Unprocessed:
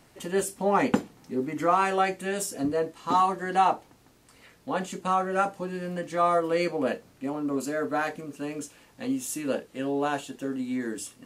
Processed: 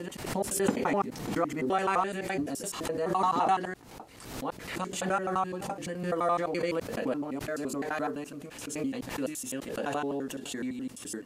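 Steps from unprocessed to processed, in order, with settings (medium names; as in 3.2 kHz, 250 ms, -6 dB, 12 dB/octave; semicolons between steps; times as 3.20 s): slices played last to first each 85 ms, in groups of 4; swell ahead of each attack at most 61 dB/s; trim -4.5 dB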